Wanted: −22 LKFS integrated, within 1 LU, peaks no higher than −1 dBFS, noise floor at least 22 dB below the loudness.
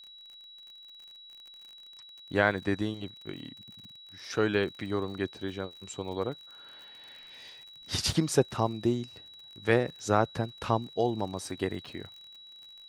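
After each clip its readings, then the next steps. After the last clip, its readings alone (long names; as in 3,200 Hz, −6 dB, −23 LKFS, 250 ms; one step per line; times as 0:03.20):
crackle rate 48 per second; interfering tone 3,900 Hz; level of the tone −48 dBFS; integrated loudness −31.0 LKFS; sample peak −8.5 dBFS; target loudness −22.0 LKFS
→ click removal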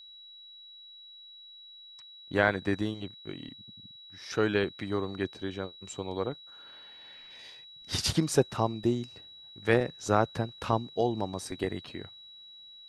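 crackle rate 0 per second; interfering tone 3,900 Hz; level of the tone −48 dBFS
→ notch filter 3,900 Hz, Q 30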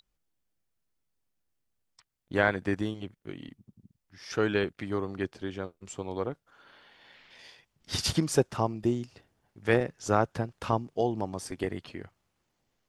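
interfering tone none found; integrated loudness −30.5 LKFS; sample peak −8.5 dBFS; target loudness −22.0 LKFS
→ level +8.5 dB
brickwall limiter −1 dBFS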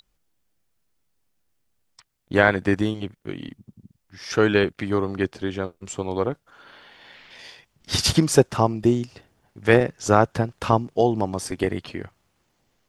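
integrated loudness −22.5 LKFS; sample peak −1.0 dBFS; background noise floor −71 dBFS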